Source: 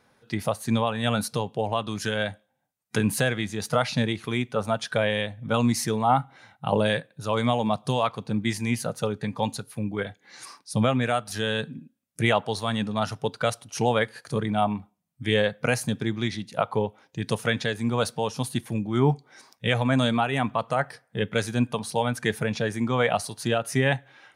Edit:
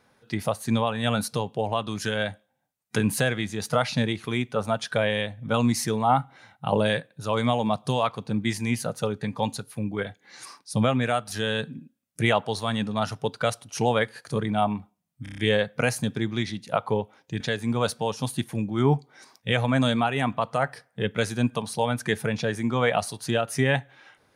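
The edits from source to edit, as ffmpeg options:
-filter_complex "[0:a]asplit=7[s0][s1][s2][s3][s4][s5][s6];[s0]atrim=end=15.262[s7];[s1]atrim=start=15.228:end=15.262[s8];[s2]atrim=start=15.228:end=15.262[s9];[s3]atrim=start=15.228:end=15.262[s10];[s4]atrim=start=15.228:end=15.262[s11];[s5]atrim=start=15.228:end=17.252[s12];[s6]atrim=start=17.568[s13];[s7][s8]acrossfade=d=0.004:c1=hsin:c2=hsin[s14];[s14][s9]acrossfade=d=0.004:c1=hsin:c2=hsin[s15];[s15][s10]acrossfade=d=0.004:c1=hsin:c2=hsin[s16];[s16][s11]acrossfade=d=0.004:c1=hsin:c2=hsin[s17];[s17][s12]acrossfade=d=0.004:c1=hsin:c2=hsin[s18];[s18][s13]acrossfade=d=0.004:c1=hsin:c2=hsin"

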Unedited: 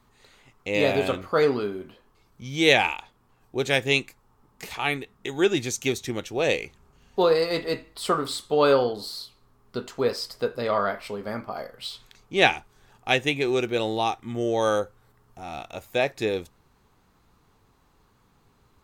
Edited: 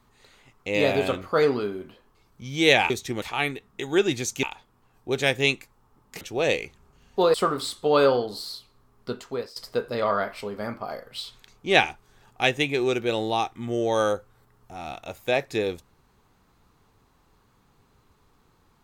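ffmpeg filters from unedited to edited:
-filter_complex "[0:a]asplit=7[s0][s1][s2][s3][s4][s5][s6];[s0]atrim=end=2.902[s7];[s1]atrim=start=5.888:end=6.212[s8];[s2]atrim=start=4.678:end=5.892[s9];[s3]atrim=start=2.898:end=4.682[s10];[s4]atrim=start=6.208:end=7.342[s11];[s5]atrim=start=8.008:end=10.23,asetpts=PTS-STARTPTS,afade=t=out:st=1.772:d=0.45:silence=0.112202[s12];[s6]atrim=start=10.23,asetpts=PTS-STARTPTS,afade=t=in:d=0.004:c=hsin:silence=0.112202[s13];[s7][s8]acrossfade=d=0.004:c1=hsin:c2=hsin[s14];[s14][s9]acrossfade=d=0.004:c1=hsin:c2=hsin[s15];[s15][s10]acrossfade=d=0.004:c1=hsin:c2=hsin[s16];[s16][s11]acrossfade=d=0.004:c1=hsin:c2=hsin[s17];[s12][s13]concat=n=2:v=0:a=1[s18];[s17][s18]acrossfade=d=0.004:c1=hsin:c2=hsin"

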